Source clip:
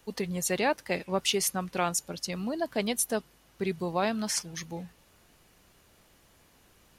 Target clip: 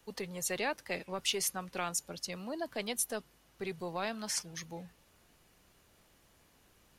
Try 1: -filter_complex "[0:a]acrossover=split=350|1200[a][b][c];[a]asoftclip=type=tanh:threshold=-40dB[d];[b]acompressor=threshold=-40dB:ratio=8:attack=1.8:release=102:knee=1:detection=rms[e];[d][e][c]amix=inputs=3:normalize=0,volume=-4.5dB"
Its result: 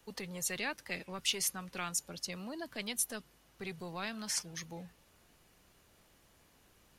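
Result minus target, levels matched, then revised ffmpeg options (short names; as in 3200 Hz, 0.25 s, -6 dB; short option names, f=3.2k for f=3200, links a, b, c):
compressor: peak gain reduction +10.5 dB
-filter_complex "[0:a]acrossover=split=350|1200[a][b][c];[a]asoftclip=type=tanh:threshold=-40dB[d];[b]acompressor=threshold=-28dB:ratio=8:attack=1.8:release=102:knee=1:detection=rms[e];[d][e][c]amix=inputs=3:normalize=0,volume=-4.5dB"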